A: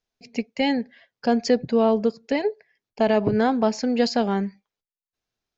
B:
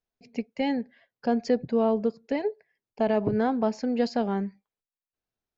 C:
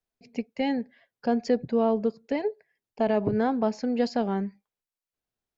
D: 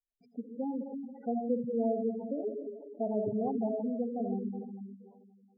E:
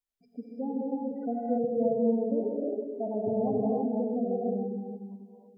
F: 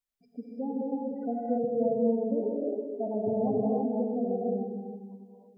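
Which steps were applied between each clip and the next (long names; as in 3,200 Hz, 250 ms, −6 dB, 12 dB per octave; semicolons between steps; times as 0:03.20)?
high-shelf EQ 2,300 Hz −9 dB; level −4 dB
tape wow and flutter 19 cents
comb and all-pass reverb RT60 2 s, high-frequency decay 0.95×, pre-delay 20 ms, DRR 1.5 dB; gate on every frequency bin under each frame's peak −10 dB strong; level −8 dB
reverb whose tail is shaped and stops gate 350 ms rising, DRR −3.5 dB
echo through a band-pass that steps 103 ms, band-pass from 170 Hz, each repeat 1.4 octaves, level −9 dB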